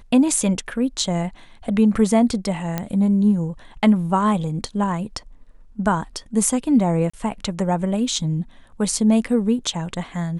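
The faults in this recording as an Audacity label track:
2.780000	2.780000	click −9 dBFS
7.100000	7.130000	drop-out 35 ms

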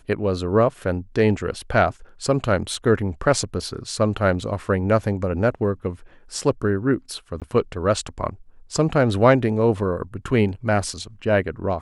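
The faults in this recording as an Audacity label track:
2.740000	2.740000	drop-out 2.3 ms
7.400000	7.420000	drop-out 17 ms

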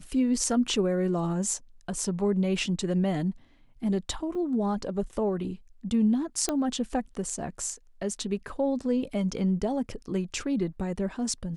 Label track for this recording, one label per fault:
4.350000	4.350000	drop-out 3.7 ms
6.490000	6.490000	click −13 dBFS

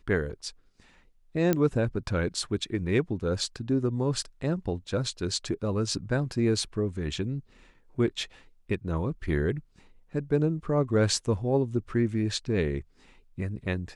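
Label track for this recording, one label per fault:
1.530000	1.530000	click −11 dBFS

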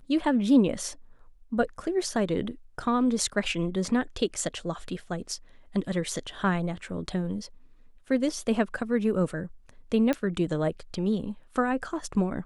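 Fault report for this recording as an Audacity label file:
10.130000	10.130000	click −15 dBFS

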